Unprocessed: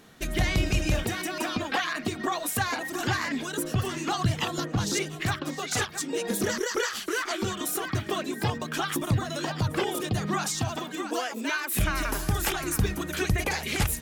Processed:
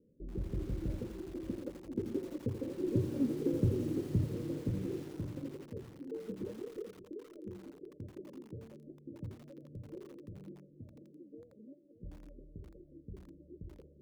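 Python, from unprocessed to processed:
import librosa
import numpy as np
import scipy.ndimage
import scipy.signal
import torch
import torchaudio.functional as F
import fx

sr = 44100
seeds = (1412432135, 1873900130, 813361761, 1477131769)

p1 = fx.doppler_pass(x, sr, speed_mps=16, closest_m=12.0, pass_at_s=3.14)
p2 = fx.dynamic_eq(p1, sr, hz=110.0, q=1.7, threshold_db=-57.0, ratio=4.0, max_db=-3)
p3 = scipy.signal.sosfilt(scipy.signal.cheby1(8, 1.0, 570.0, 'lowpass', fs=sr, output='sos'), p2)
p4 = p3 + fx.echo_feedback(p3, sr, ms=575, feedback_pct=43, wet_db=-14, dry=0)
p5 = fx.echo_crushed(p4, sr, ms=84, feedback_pct=80, bits=8, wet_db=-11.0)
y = F.gain(torch.from_numpy(p5), 1.0).numpy()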